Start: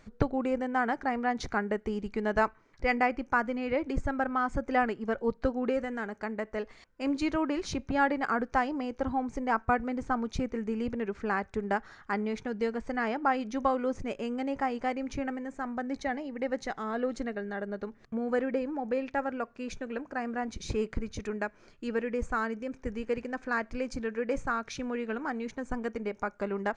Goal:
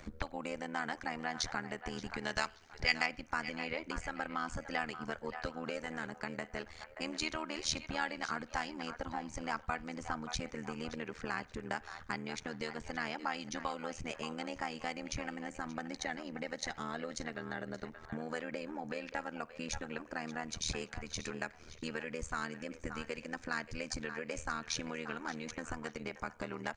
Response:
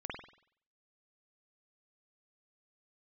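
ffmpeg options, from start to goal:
-filter_complex "[0:a]asettb=1/sr,asplit=3[s0][s1][s2];[s0]atrim=end=2.214[s3];[s1]atrim=start=2.21:end=3.06,asetpts=PTS-STARTPTS,afade=t=in:d=0.004:c=qsin,afade=t=out:st=0.846:d=0.004:c=qsin,equalizer=f=4700:w=0.6:g=7.5[s4];[s2]atrim=start=3.056[s5];[s3][s4]acrossfade=d=0.004:c1=hsin:c2=qsin[s6];[s6][s5]acrossfade=d=0.004:c1=qsin:c2=hsin,acrossover=split=620[s7][s8];[s7]acompressor=threshold=0.00631:ratio=12[s9];[s8]asplit=2[s10][s11];[s11]adelay=577,lowpass=f=4400:p=1,volume=0.237,asplit=2[s12][s13];[s13]adelay=577,lowpass=f=4400:p=1,volume=0.31,asplit=2[s14][s15];[s15]adelay=577,lowpass=f=4400:p=1,volume=0.31[s16];[s10][s12][s14][s16]amix=inputs=4:normalize=0[s17];[s9][s17]amix=inputs=2:normalize=0,acrossover=split=230|3000[s18][s19][s20];[s19]acompressor=threshold=0.00158:ratio=2[s21];[s18][s21][s20]amix=inputs=3:normalize=0,tremolo=f=79:d=0.889,asplit=2[s22][s23];[1:a]atrim=start_sample=2205[s24];[s23][s24]afir=irnorm=-1:irlink=0,volume=0.075[s25];[s22][s25]amix=inputs=2:normalize=0,volume=2.99"

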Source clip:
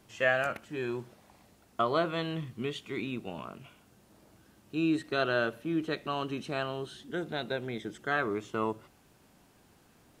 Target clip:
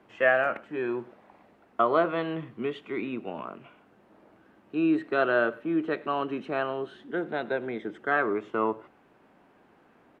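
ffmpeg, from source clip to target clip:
-filter_complex "[0:a]acrossover=split=210 2500:gain=0.178 1 0.0631[s0][s1][s2];[s0][s1][s2]amix=inputs=3:normalize=0,asplit=2[s3][s4];[s4]adelay=99.13,volume=0.0794,highshelf=f=4000:g=-2.23[s5];[s3][s5]amix=inputs=2:normalize=0,volume=1.88"

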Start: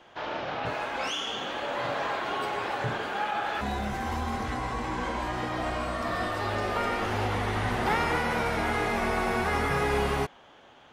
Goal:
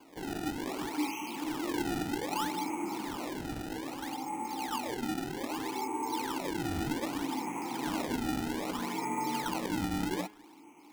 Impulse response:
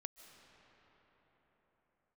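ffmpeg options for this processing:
-filter_complex "[0:a]highpass=f=210:t=q:w=0.5412,highpass=f=210:t=q:w=1.307,lowpass=f=3100:t=q:w=0.5176,lowpass=f=3100:t=q:w=0.7071,lowpass=f=3100:t=q:w=1.932,afreqshift=-230,highpass=140,asplit=2[s0][s1];[s1]acompressor=threshold=0.0141:ratio=6,volume=1.06[s2];[s0][s2]amix=inputs=2:normalize=0,asplit=3[s3][s4][s5];[s3]bandpass=f=300:t=q:w=8,volume=1[s6];[s4]bandpass=f=870:t=q:w=8,volume=0.501[s7];[s5]bandpass=f=2240:t=q:w=8,volume=0.355[s8];[s6][s7][s8]amix=inputs=3:normalize=0,acrusher=samples=23:mix=1:aa=0.000001:lfo=1:lforange=36.8:lforate=0.63,bandreject=f=210.3:t=h:w=4,bandreject=f=420.6:t=h:w=4,bandreject=f=630.9:t=h:w=4,bandreject=f=841.2:t=h:w=4,bandreject=f=1051.5:t=h:w=4,bandreject=f=1261.8:t=h:w=4,bandreject=f=1472.1:t=h:w=4,bandreject=f=1682.4:t=h:w=4,bandreject=f=1892.7:t=h:w=4,bandreject=f=2103:t=h:w=4,bandreject=f=2313.3:t=h:w=4,bandreject=f=2523.6:t=h:w=4,bandreject=f=2733.9:t=h:w=4,bandreject=f=2944.2:t=h:w=4,bandreject=f=3154.5:t=h:w=4,bandreject=f=3364.8:t=h:w=4,volume=2"

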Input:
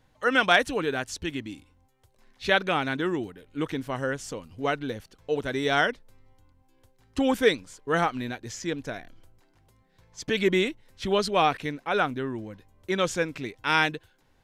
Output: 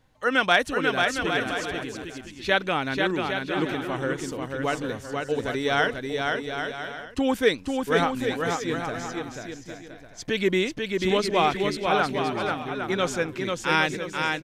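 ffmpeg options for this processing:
-af "aecho=1:1:490|808.5|1016|1150|1238:0.631|0.398|0.251|0.158|0.1"

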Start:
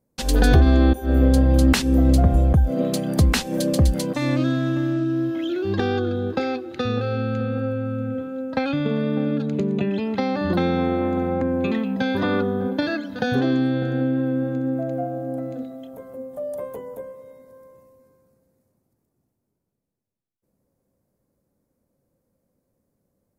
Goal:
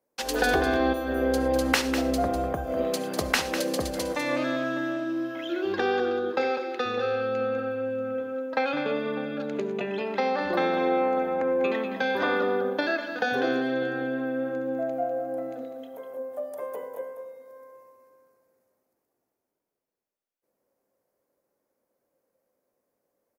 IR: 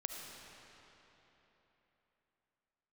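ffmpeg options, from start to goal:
-filter_complex "[0:a]acrossover=split=360 3600:gain=0.0708 1 0.0891[s0][s1][s2];[s0][s1][s2]amix=inputs=3:normalize=0,bandreject=f=45.19:t=h:w=4,bandreject=f=90.38:t=h:w=4,bandreject=f=135.57:t=h:w=4,bandreject=f=180.76:t=h:w=4,bandreject=f=225.95:t=h:w=4,bandreject=f=271.14:t=h:w=4,bandreject=f=316.33:t=h:w=4,bandreject=f=361.52:t=h:w=4,bandreject=f=406.71:t=h:w=4,bandreject=f=451.9:t=h:w=4,bandreject=f=497.09:t=h:w=4,bandreject=f=542.28:t=h:w=4,bandreject=f=587.47:t=h:w=4,bandreject=f=632.66:t=h:w=4,bandreject=f=677.85:t=h:w=4,bandreject=f=723.04:t=h:w=4,bandreject=f=768.23:t=h:w=4,bandreject=f=813.42:t=h:w=4,bandreject=f=858.61:t=h:w=4,bandreject=f=903.8:t=h:w=4,bandreject=f=948.99:t=h:w=4,bandreject=f=994.18:t=h:w=4,bandreject=f=1039.37:t=h:w=4,bandreject=f=1084.56:t=h:w=4,bandreject=f=1129.75:t=h:w=4,bandreject=f=1174.94:t=h:w=4,bandreject=f=1220.13:t=h:w=4,bandreject=f=1265.32:t=h:w=4,bandreject=f=1310.51:t=h:w=4,bandreject=f=1355.7:t=h:w=4,aexciter=amount=2.7:drive=6.8:freq=5200,aecho=1:1:199:0.355,asplit=2[s3][s4];[1:a]atrim=start_sample=2205,afade=t=out:st=0.17:d=0.01,atrim=end_sample=7938,highshelf=f=4700:g=8[s5];[s4][s5]afir=irnorm=-1:irlink=0,volume=0.891[s6];[s3][s6]amix=inputs=2:normalize=0,volume=0.708"

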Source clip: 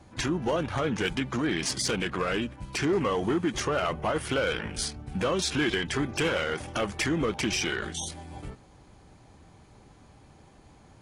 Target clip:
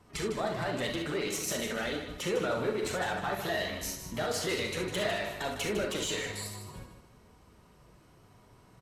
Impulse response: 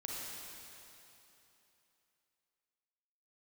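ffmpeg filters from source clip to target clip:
-filter_complex "[0:a]equalizer=f=220:t=o:w=0.21:g=-6,asetrate=55125,aresample=44100,flanger=delay=3.7:depth=4.7:regen=-43:speed=0.54:shape=triangular,aecho=1:1:154|308|462|616:0.355|0.114|0.0363|0.0116[s0];[1:a]atrim=start_sample=2205,atrim=end_sample=3528[s1];[s0][s1]afir=irnorm=-1:irlink=0,volume=1.26"

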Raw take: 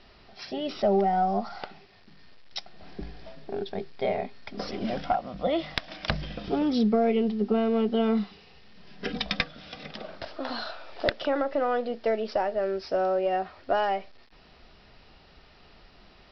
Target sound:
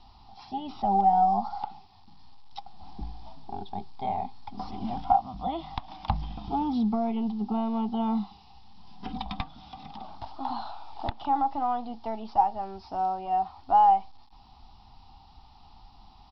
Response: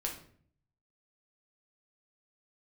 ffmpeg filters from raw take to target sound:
-filter_complex "[0:a]acrossover=split=3100[s0][s1];[s1]acompressor=threshold=0.00178:ratio=4:attack=1:release=60[s2];[s0][s2]amix=inputs=2:normalize=0,firequalizer=gain_entry='entry(110,0);entry(150,-8);entry(260,-5);entry(380,-17);entry(550,-26);entry(810,8);entry(1600,-22);entry(3500,-6)':delay=0.05:min_phase=1,volume=1.58"

